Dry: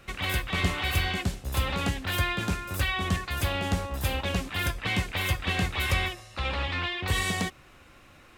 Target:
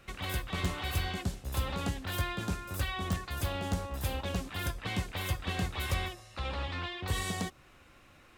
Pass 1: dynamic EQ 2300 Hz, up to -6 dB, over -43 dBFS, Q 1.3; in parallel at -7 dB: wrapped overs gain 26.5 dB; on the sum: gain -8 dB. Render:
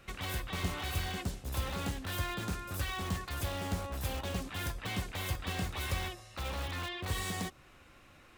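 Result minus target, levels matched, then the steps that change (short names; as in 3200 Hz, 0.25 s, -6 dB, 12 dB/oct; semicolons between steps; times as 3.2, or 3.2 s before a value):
wrapped overs: distortion +24 dB
change: wrapped overs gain 15.5 dB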